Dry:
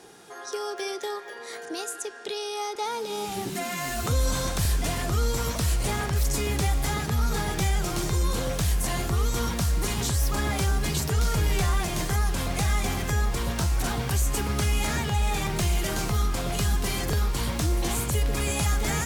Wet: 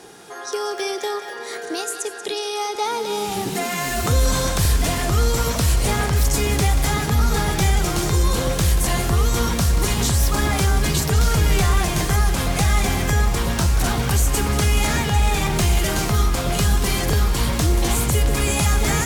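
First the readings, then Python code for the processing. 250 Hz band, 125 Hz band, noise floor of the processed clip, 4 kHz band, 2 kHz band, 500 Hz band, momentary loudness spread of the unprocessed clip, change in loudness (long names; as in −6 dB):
+7.0 dB, +7.0 dB, −32 dBFS, +7.0 dB, +7.0 dB, +7.0 dB, 6 LU, +7.0 dB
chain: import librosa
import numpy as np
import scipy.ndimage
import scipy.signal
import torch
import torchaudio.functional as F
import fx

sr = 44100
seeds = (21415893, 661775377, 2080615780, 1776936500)

y = fx.echo_split(x, sr, split_hz=510.0, low_ms=602, high_ms=184, feedback_pct=52, wet_db=-11.5)
y = y * librosa.db_to_amplitude(6.5)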